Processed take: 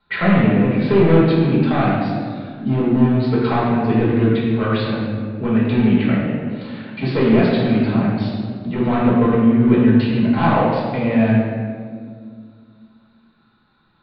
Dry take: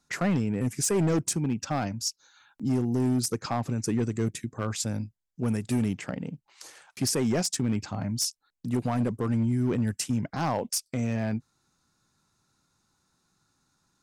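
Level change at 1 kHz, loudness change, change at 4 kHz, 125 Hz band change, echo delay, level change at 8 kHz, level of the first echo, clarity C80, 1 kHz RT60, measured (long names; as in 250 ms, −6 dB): +13.0 dB, +11.5 dB, +3.0 dB, +10.5 dB, no echo audible, below −40 dB, no echo audible, 1.0 dB, 1.7 s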